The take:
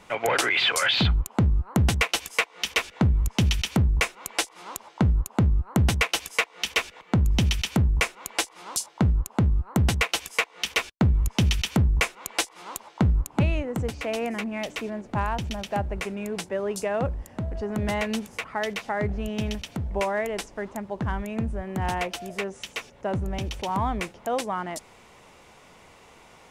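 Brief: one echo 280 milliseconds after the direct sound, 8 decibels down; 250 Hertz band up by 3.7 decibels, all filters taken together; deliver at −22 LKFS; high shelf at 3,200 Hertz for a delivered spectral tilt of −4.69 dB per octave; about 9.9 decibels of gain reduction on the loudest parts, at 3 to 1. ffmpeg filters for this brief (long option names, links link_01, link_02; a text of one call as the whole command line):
ffmpeg -i in.wav -af "equalizer=frequency=250:width_type=o:gain=5,highshelf=frequency=3200:gain=-8,acompressor=threshold=-29dB:ratio=3,aecho=1:1:280:0.398,volume=10dB" out.wav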